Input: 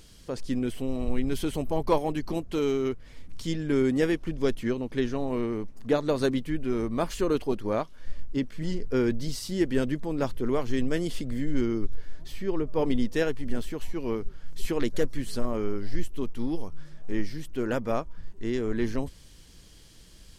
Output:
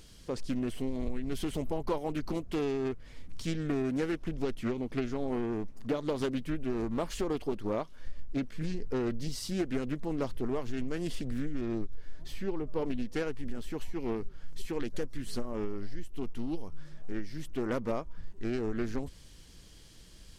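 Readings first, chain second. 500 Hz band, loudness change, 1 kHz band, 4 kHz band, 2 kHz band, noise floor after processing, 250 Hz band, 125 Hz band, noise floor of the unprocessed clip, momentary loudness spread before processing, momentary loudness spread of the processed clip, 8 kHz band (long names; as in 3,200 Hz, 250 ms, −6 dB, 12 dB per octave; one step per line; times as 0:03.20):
−6.5 dB, −5.5 dB, −6.0 dB, −5.5 dB, −6.5 dB, −52 dBFS, −5.5 dB, −5.0 dB, −50 dBFS, 9 LU, 12 LU, −4.5 dB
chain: downward compressor, threshold −26 dBFS, peak gain reduction 9.5 dB
highs frequency-modulated by the lows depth 0.34 ms
level −1.5 dB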